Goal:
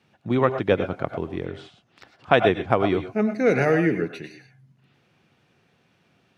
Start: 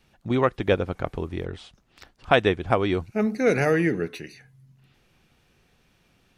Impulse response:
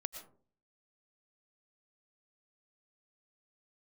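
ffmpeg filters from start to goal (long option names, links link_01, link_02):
-filter_complex "[0:a]highpass=frequency=99:width=0.5412,highpass=frequency=99:width=1.3066,aemphasis=mode=reproduction:type=50kf[link_01];[1:a]atrim=start_sample=2205,afade=type=out:start_time=0.19:duration=0.01,atrim=end_sample=8820,asetrate=48510,aresample=44100[link_02];[link_01][link_02]afir=irnorm=-1:irlink=0,volume=4.5dB"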